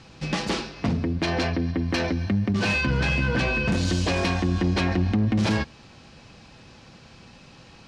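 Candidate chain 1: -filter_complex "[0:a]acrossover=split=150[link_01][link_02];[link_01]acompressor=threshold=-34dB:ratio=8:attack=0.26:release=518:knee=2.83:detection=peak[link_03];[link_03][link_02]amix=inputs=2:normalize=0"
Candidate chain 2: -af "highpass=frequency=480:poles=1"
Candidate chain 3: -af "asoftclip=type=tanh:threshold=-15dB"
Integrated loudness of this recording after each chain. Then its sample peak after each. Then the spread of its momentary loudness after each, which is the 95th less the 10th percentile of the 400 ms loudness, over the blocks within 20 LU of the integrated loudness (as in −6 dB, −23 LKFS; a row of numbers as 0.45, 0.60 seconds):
−26.0, −28.5, −25.5 LKFS; −12.0, −14.0, −15.5 dBFS; 5, 8, 5 LU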